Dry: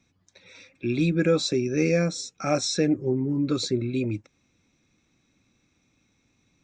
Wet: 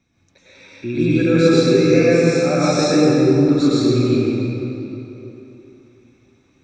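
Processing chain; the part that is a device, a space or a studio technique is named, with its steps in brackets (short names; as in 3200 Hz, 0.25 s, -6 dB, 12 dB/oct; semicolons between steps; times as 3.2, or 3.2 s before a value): swimming-pool hall (reverb RT60 3.3 s, pre-delay 94 ms, DRR -9 dB; high shelf 3800 Hz -6.5 dB); gain +1 dB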